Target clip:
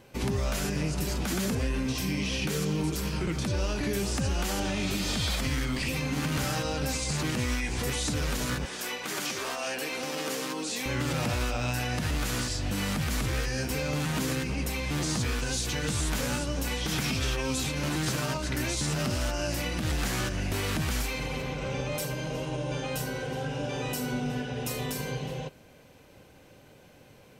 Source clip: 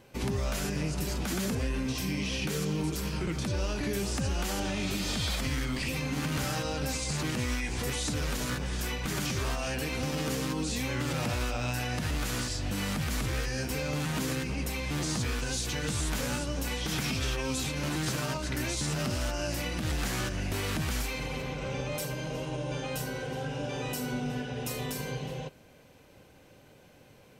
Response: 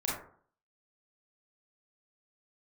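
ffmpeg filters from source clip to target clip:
-filter_complex "[0:a]asettb=1/sr,asplit=3[a][b][c];[a]atrim=end=8.654[d];[b]atrim=start=8.65:end=10.86,asetpts=PTS-STARTPTS,afade=t=in:d=0.004:c=qsin,afade=t=out:st=2.206:d=0.004:c=qsin,highpass=350[e];[c]atrim=start=10.856[f];[d][e]acrossfade=d=0.004:c1=hsin:c2=qsin[g];[g][f]acrossfade=d=0.004:c1=qsin:c2=hsin,volume=2dB"

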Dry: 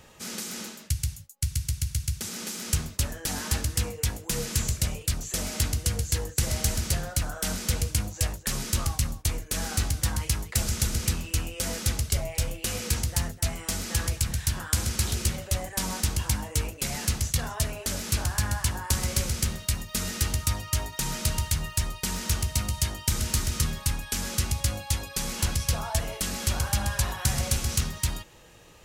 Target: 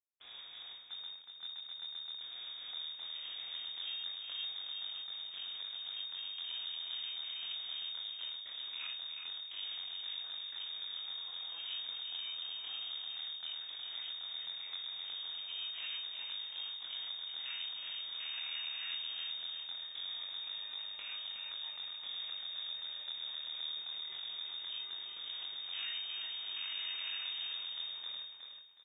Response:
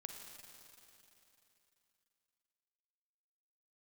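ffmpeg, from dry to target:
-filter_complex "[0:a]afwtdn=0.0282,acrossover=split=2900[a][b];[b]acompressor=threshold=-57dB:ratio=4:attack=1:release=60[c];[a][c]amix=inputs=2:normalize=0,highpass=f=600:p=1,acompressor=threshold=-46dB:ratio=2,flanger=delay=20:depth=5.7:speed=0.19,acrusher=bits=7:dc=4:mix=0:aa=0.000001,asplit=2[d][e];[e]adelay=39,volume=-10.5dB[f];[d][f]amix=inputs=2:normalize=0,aecho=1:1:367|734|1101|1468:0.501|0.145|0.0421|0.0122,lowpass=f=3.1k:t=q:w=0.5098,lowpass=f=3.1k:t=q:w=0.6013,lowpass=f=3.1k:t=q:w=0.9,lowpass=f=3.1k:t=q:w=2.563,afreqshift=-3700,volume=7.5dB"

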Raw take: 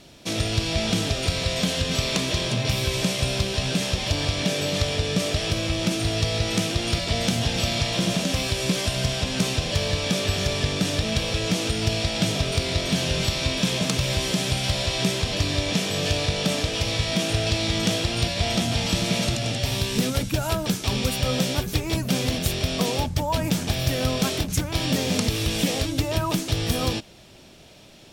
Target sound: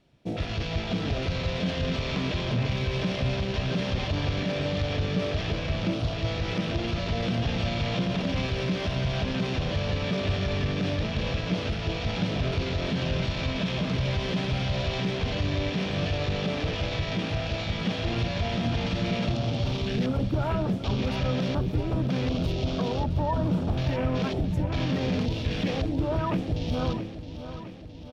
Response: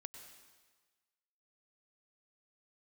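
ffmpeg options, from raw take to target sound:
-filter_complex "[0:a]afwtdn=0.0282,alimiter=limit=-19.5dB:level=0:latency=1:release=27,bass=f=250:g=3,treble=f=4k:g=-13,bandreject=f=109.1:t=h:w=4,bandreject=f=218.2:t=h:w=4,bandreject=f=327.3:t=h:w=4,bandreject=f=436.4:t=h:w=4,bandreject=f=545.5:t=h:w=4,bandreject=f=654.6:t=h:w=4,asplit=2[a][b];[b]aecho=0:1:666|1332|1998|2664|3330|3996|4662:0.251|0.151|0.0904|0.0543|0.0326|0.0195|0.0117[c];[a][c]amix=inputs=2:normalize=0"

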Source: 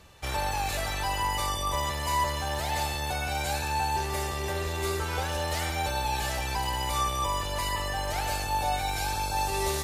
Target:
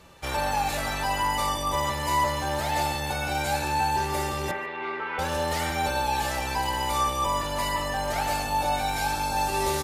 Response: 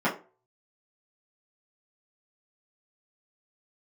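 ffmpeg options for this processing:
-filter_complex "[0:a]asettb=1/sr,asplit=3[a][b][c];[a]atrim=end=4.514[d];[b]atrim=start=4.51:end=5.19,asetpts=PTS-STARTPTS,afade=t=in:d=0.004:c=qsin,afade=t=out:st=0.676:d=0.004:c=qsin,highpass=380,equalizer=f=380:t=q:w=4:g=-4,equalizer=f=590:t=q:w=4:g=-7,equalizer=f=1.4k:t=q:w=4:g=-3,equalizer=f=2.1k:t=q:w=4:g=5,lowpass=f=2.7k:w=0.5412,lowpass=f=2.7k:w=1.3066[e];[c]atrim=start=5.186[f];[d][e]acrossfade=d=0.004:c1=hsin:c2=qsin[g];[g][f]acrossfade=d=0.004:c1=qsin:c2=hsin,aecho=1:1:146:0.0891,asplit=2[h][i];[1:a]atrim=start_sample=2205[j];[i][j]afir=irnorm=-1:irlink=0,volume=-15dB[k];[h][k]amix=inputs=2:normalize=0"

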